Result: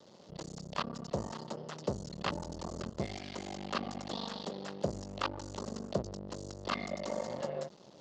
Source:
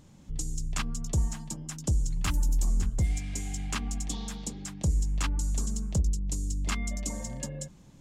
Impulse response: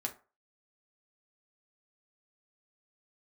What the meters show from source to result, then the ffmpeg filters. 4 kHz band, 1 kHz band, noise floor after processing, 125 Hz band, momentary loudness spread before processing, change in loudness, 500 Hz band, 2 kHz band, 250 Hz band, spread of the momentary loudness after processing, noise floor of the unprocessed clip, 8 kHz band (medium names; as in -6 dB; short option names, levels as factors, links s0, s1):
-1.5 dB, +4.0 dB, -57 dBFS, -12.5 dB, 9 LU, -7.5 dB, +8.5 dB, -3.0 dB, -3.5 dB, 5 LU, -53 dBFS, -15.5 dB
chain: -filter_complex "[0:a]aeval=exprs='max(val(0),0)':c=same,acrossover=split=3000[s0][s1];[s1]acompressor=threshold=0.00316:ratio=4:attack=1:release=60[s2];[s0][s2]amix=inputs=2:normalize=0,highpass=270,equalizer=f=280:t=q:w=4:g=-7,equalizer=f=580:t=q:w=4:g=7,equalizer=f=1600:t=q:w=4:g=-5,equalizer=f=2300:t=q:w=4:g=-9,equalizer=f=4500:t=q:w=4:g=6,lowpass=f=5500:w=0.5412,lowpass=f=5500:w=1.3066,volume=2.51"